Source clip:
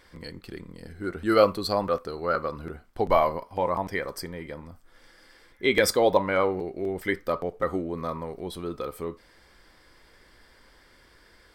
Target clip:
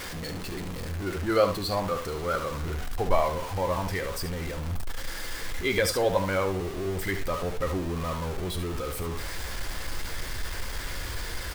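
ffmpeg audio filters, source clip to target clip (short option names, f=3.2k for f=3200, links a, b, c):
-af "aeval=exprs='val(0)+0.5*0.0447*sgn(val(0))':c=same,aecho=1:1:11|72:0.282|0.316,asubboost=boost=3:cutoff=120,volume=-5dB"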